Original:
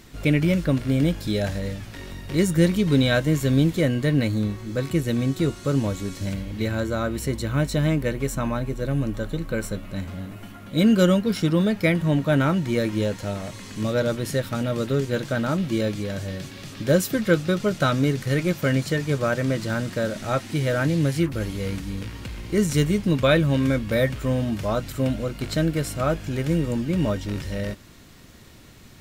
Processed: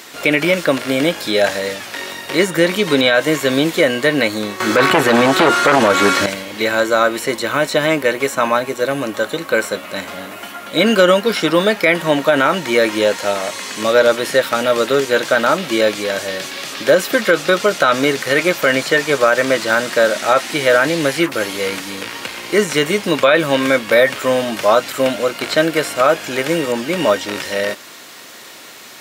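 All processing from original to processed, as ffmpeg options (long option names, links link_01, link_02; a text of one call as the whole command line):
ffmpeg -i in.wav -filter_complex "[0:a]asettb=1/sr,asplit=3[link_01][link_02][link_03];[link_01]atrim=end=4.604[link_04];[link_02]atrim=start=4.6:end=6.26,asetpts=PTS-STARTPTS,afade=type=in:duration=0.004:curve=qsin,afade=type=out:start_time=1.656:duration=0.004:curve=qsin,equalizer=frequency=1400:width_type=o:width=0.48:gain=8,aeval=exprs='0.316*sin(PI/2*2.51*val(0)/0.316)':channel_layout=same[link_05];[link_03]atrim=start=6.256[link_06];[link_04][link_05]acrossfade=duration=0.004:curve1=hsin:curve2=qsin[link_07];[link_07][link_06]acrossfade=duration=0.004:curve1=qsin:curve2=hsin,highpass=550,acrossover=split=3500[link_08][link_09];[link_09]acompressor=threshold=-42dB:ratio=4:attack=1:release=60[link_10];[link_08][link_10]amix=inputs=2:normalize=0,alimiter=level_in=17dB:limit=-1dB:release=50:level=0:latency=1,volume=-1dB" out.wav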